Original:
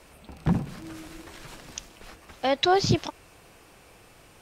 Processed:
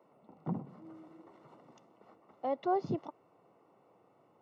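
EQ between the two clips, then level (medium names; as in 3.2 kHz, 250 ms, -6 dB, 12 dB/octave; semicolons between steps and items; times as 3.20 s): Savitzky-Golay filter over 65 samples; Bessel high-pass 200 Hz, order 8; -8.5 dB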